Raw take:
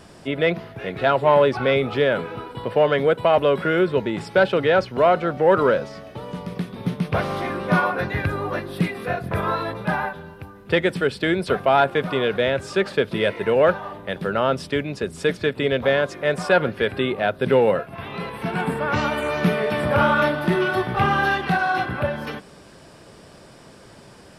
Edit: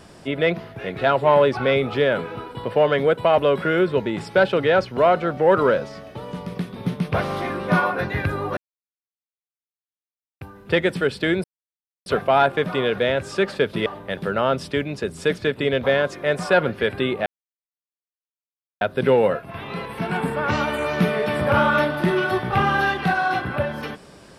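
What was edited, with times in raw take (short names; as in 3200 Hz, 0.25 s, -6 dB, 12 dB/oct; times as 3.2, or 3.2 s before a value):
8.57–10.41 mute
11.44 insert silence 0.62 s
13.24–13.85 cut
17.25 insert silence 1.55 s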